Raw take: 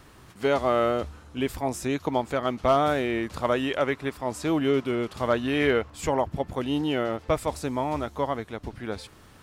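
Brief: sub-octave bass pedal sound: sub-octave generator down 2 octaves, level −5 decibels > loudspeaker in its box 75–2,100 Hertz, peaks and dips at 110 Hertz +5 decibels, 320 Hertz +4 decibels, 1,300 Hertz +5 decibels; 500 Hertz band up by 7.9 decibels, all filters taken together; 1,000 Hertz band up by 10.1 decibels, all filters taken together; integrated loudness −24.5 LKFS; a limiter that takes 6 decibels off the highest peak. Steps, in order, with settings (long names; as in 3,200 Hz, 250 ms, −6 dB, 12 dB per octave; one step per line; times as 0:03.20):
parametric band 500 Hz +6.5 dB
parametric band 1,000 Hz +9 dB
brickwall limiter −9 dBFS
sub-octave generator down 2 octaves, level −5 dB
loudspeaker in its box 75–2,100 Hz, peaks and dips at 110 Hz +5 dB, 320 Hz +4 dB, 1,300 Hz +5 dB
level −3.5 dB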